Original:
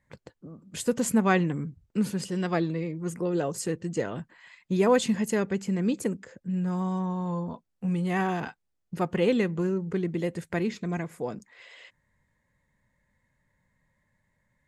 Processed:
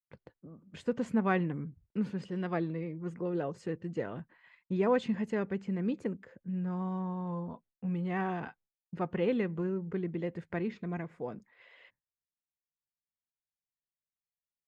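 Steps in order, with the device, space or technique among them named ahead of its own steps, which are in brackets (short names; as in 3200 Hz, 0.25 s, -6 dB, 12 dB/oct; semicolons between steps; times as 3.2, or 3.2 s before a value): hearing-loss simulation (LPF 2600 Hz 12 dB/oct; expander -51 dBFS); gain -6 dB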